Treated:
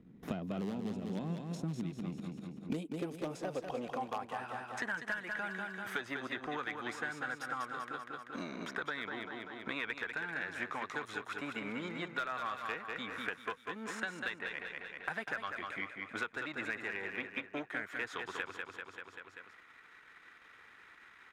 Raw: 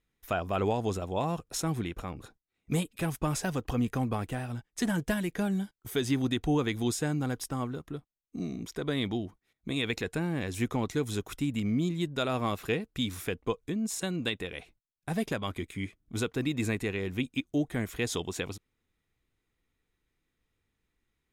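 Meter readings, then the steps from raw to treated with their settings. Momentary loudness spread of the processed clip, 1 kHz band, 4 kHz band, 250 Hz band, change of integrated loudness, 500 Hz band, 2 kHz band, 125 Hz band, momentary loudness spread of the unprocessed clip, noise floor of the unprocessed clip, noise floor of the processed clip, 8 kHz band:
10 LU, -3.0 dB, -9.0 dB, -11.0 dB, -7.5 dB, -9.5 dB, +1.5 dB, -14.0 dB, 8 LU, -82 dBFS, -59 dBFS, -16.0 dB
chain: half-wave gain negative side -7 dB; band-pass sweep 200 Hz -> 1500 Hz, 2.26–4.82; one-sided clip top -33 dBFS; feedback echo 0.194 s, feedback 40%, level -6.5 dB; three-band squash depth 100%; gain +5 dB

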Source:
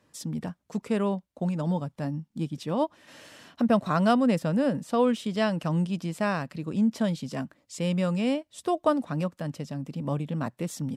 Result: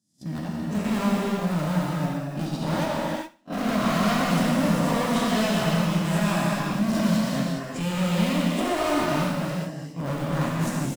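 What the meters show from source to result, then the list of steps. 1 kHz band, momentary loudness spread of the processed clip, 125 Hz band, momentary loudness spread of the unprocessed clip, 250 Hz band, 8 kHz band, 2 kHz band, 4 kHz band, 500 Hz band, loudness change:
+4.0 dB, 8 LU, +4.5 dB, 11 LU, +3.0 dB, +9.0 dB, +7.5 dB, +8.5 dB, +0.5 dB, +3.0 dB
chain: spectral swells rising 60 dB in 0.79 s; gate -29 dBFS, range -38 dB; HPF 41 Hz 12 dB/oct; bell 460 Hz -7 dB 0.28 oct; in parallel at -6.5 dB: wrapped overs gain 25.5 dB; on the sum: modulation noise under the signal 34 dB; hard clip -26.5 dBFS, distortion -7 dB; on a send: feedback echo 75 ms, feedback 30%, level -18.5 dB; on the sum: non-linear reverb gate 0.44 s flat, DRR -4.5 dB

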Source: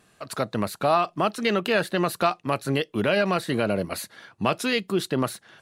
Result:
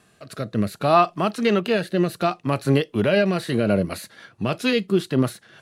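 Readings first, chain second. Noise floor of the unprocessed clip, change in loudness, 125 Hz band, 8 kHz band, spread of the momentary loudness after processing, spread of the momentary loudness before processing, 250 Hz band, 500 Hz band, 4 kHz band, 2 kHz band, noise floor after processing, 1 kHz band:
-62 dBFS, +3.0 dB, +6.5 dB, -3.0 dB, 11 LU, 8 LU, +5.0 dB, +3.0 dB, 0.0 dB, 0.0 dB, -59 dBFS, +1.5 dB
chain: rotary speaker horn 0.65 Hz, later 6.7 Hz, at 3.07; harmonic-percussive split harmonic +8 dB

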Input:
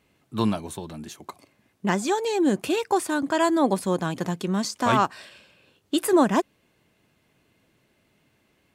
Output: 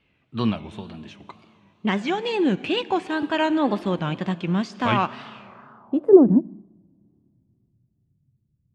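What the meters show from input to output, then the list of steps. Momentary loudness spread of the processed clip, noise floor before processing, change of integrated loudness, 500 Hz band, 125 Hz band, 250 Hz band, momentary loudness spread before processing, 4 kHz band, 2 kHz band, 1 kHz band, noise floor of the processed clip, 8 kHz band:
23 LU, -67 dBFS, +2.5 dB, +3.5 dB, +3.0 dB, +3.0 dB, 16 LU, +1.5 dB, +1.0 dB, -1.5 dB, -69 dBFS, under -15 dB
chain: tone controls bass +5 dB, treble +4 dB; Schroeder reverb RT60 3.1 s, combs from 29 ms, DRR 14 dB; in parallel at +1 dB: limiter -17.5 dBFS, peak gain reduction 10.5 dB; on the sum: low-pass sweep 2800 Hz -> 130 Hz, 5.41–6.67; wow and flutter 110 cents; upward expander 1.5:1, over -25 dBFS; gain -1 dB

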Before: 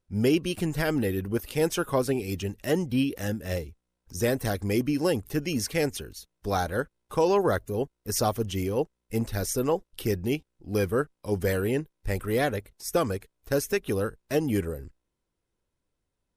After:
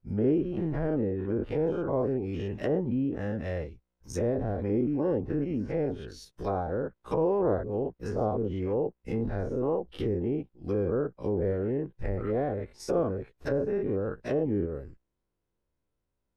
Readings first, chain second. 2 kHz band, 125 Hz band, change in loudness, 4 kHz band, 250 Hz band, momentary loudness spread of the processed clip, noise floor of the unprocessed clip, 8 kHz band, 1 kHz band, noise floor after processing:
-11.0 dB, -2.0 dB, -2.0 dB, under -15 dB, -1.5 dB, 7 LU, -82 dBFS, under -15 dB, -5.0 dB, -82 dBFS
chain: spectral dilation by 0.12 s; treble ducked by the level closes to 690 Hz, closed at -19 dBFS; mismatched tape noise reduction decoder only; gain -5.5 dB

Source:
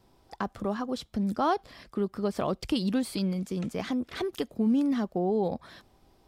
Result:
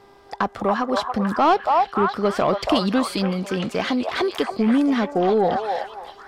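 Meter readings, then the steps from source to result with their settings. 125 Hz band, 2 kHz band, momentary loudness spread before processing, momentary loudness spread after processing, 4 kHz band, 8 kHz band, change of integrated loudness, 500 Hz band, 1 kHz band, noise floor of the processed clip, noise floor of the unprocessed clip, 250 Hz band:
+5.0 dB, +13.5 dB, 7 LU, 7 LU, +10.5 dB, +6.5 dB, +8.5 dB, +10.0 dB, +13.5 dB, -49 dBFS, -64 dBFS, +6.0 dB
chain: buzz 400 Hz, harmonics 5, -63 dBFS -8 dB/oct; delay with a stepping band-pass 0.281 s, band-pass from 820 Hz, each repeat 0.7 oct, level -1 dB; overdrive pedal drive 12 dB, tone 2800 Hz, clips at -15 dBFS; gain +7.5 dB

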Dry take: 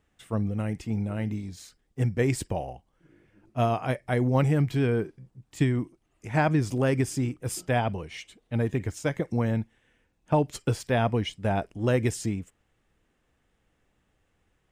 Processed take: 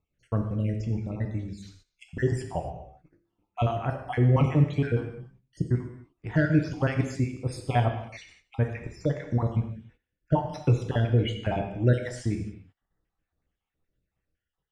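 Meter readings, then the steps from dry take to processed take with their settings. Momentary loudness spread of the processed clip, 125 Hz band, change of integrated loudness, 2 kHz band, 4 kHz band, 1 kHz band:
16 LU, +2.0 dB, 0.0 dB, -2.0 dB, -2.5 dB, -2.0 dB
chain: random spectral dropouts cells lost 56%; air absorption 82 m; non-linear reverb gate 0.31 s falling, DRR 3.5 dB; gate -57 dBFS, range -11 dB; low shelf 72 Hz +8.5 dB

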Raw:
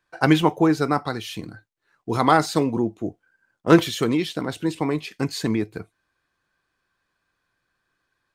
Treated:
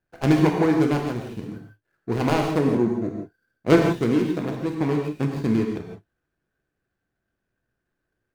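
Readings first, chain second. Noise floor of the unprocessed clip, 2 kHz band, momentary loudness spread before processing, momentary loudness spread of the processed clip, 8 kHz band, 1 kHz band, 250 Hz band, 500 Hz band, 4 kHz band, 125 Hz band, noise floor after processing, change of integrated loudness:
-76 dBFS, -3.5 dB, 16 LU, 17 LU, n/a, -6.0 dB, +0.5 dB, +0.5 dB, -7.5 dB, +1.5 dB, -81 dBFS, -0.5 dB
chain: median filter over 41 samples; non-linear reverb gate 0.19 s flat, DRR 1.5 dB

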